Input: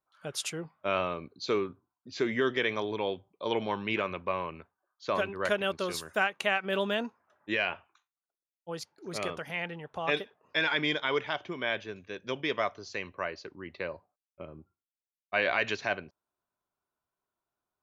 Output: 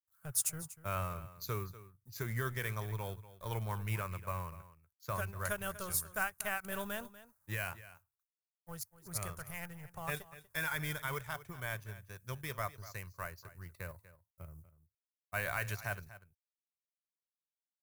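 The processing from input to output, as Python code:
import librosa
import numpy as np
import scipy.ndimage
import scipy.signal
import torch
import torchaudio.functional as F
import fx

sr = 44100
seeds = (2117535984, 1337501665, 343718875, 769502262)

p1 = fx.law_mismatch(x, sr, coded='A')
p2 = fx.curve_eq(p1, sr, hz=(120.0, 270.0, 1400.0, 3200.0, 12000.0), db=(0, -28, -15, -26, 6))
p3 = p2 + fx.echo_single(p2, sr, ms=242, db=-16.0, dry=0)
y = p3 * 10.0 ** (10.5 / 20.0)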